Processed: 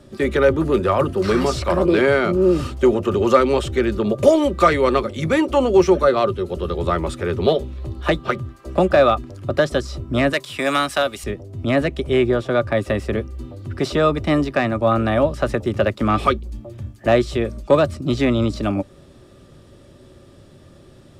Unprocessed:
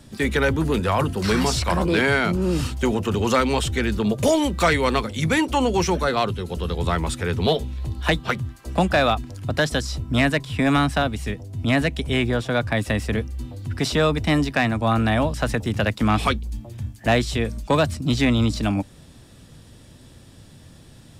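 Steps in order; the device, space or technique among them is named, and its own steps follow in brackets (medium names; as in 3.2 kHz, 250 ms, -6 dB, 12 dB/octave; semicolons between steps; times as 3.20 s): 10.33–11.24 s: tilt EQ +4 dB/octave; inside a helmet (treble shelf 5.5 kHz -7.5 dB; small resonant body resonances 380/560/1200 Hz, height 13 dB, ringing for 50 ms); trim -1.5 dB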